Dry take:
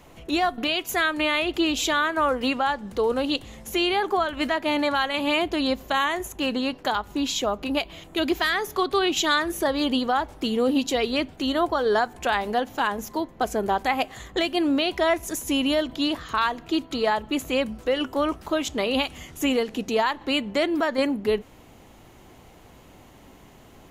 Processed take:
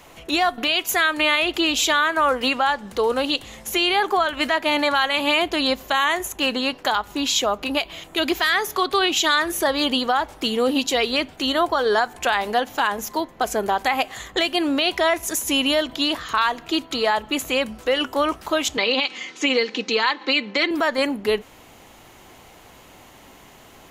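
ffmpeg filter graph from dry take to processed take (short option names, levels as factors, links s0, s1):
-filter_complex "[0:a]asettb=1/sr,asplit=3[s0][s1][s2];[s0]atrim=end=18.774[s3];[s1]atrim=start=18.77:end=20.71,asetpts=PTS-STARTPTS,afade=t=in:d=0.004:c=qsin,afade=t=out:st=1.936:d=0.004:c=qsin,highpass=f=190:w=0.5412,highpass=f=190:w=1.3066,equalizer=f=250:t=q:w=4:g=-4,equalizer=f=380:t=q:w=4:g=5,equalizer=f=680:t=q:w=4:g=-7,equalizer=f=2200:t=q:w=4:g=5,equalizer=f=4200:t=q:w=4:g=6,lowpass=f=6100:w=0.5412,lowpass=f=6100:w=1.3066,aecho=1:1:3.9:0.46,atrim=end_sample=85554[s4];[s2]atrim=start=20.706[s5];[s3][s4]acrossfade=d=0.004:c1=hsin:c2=qsin[s6];[s6][s5]acrossfade=d=0.004:c1=qsin:c2=hsin,lowshelf=f=500:g=-10,alimiter=level_in=6.68:limit=0.891:release=50:level=0:latency=1,volume=0.355"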